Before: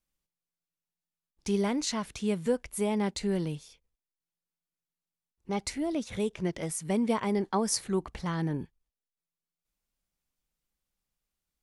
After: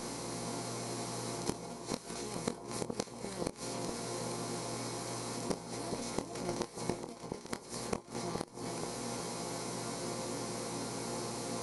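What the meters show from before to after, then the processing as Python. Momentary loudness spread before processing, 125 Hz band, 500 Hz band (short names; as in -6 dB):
8 LU, -5.5 dB, -6.0 dB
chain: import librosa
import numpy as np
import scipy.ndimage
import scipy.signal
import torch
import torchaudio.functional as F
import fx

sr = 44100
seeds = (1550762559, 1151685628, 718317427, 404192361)

y = fx.bin_compress(x, sr, power=0.2)
y = scipy.signal.sosfilt(scipy.signal.butter(2, 96.0, 'highpass', fs=sr, output='sos'), y)
y = fx.level_steps(y, sr, step_db=21)
y = fx.add_hum(y, sr, base_hz=60, snr_db=18)
y = fx.resonator_bank(y, sr, root=46, chord='minor', decay_s=0.23)
y = fx.gate_flip(y, sr, shuts_db=-33.0, range_db=-26)
y = fx.vibrato(y, sr, rate_hz=3.6, depth_cents=8.2)
y = fx.doubler(y, sr, ms=25.0, db=-10)
y = fx.echo_alternate(y, sr, ms=423, hz=1100.0, feedback_pct=55, wet_db=-4)
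y = y * 10.0 ** (13.0 / 20.0)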